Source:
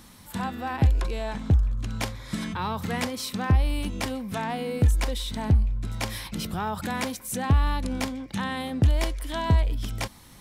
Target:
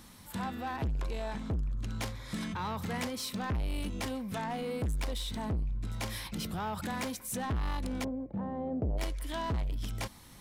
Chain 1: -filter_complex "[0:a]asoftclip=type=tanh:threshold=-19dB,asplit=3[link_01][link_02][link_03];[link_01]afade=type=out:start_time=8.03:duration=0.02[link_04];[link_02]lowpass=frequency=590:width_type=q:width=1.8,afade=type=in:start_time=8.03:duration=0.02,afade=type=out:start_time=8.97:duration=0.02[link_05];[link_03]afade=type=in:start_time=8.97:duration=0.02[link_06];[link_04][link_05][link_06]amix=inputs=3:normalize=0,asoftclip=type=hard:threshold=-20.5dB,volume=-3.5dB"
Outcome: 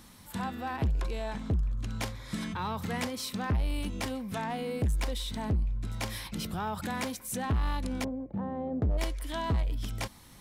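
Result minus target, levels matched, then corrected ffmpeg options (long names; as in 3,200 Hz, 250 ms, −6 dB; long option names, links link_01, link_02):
soft clipping: distortion −6 dB
-filter_complex "[0:a]asoftclip=type=tanh:threshold=-25.5dB,asplit=3[link_01][link_02][link_03];[link_01]afade=type=out:start_time=8.03:duration=0.02[link_04];[link_02]lowpass=frequency=590:width_type=q:width=1.8,afade=type=in:start_time=8.03:duration=0.02,afade=type=out:start_time=8.97:duration=0.02[link_05];[link_03]afade=type=in:start_time=8.97:duration=0.02[link_06];[link_04][link_05][link_06]amix=inputs=3:normalize=0,asoftclip=type=hard:threshold=-20.5dB,volume=-3.5dB"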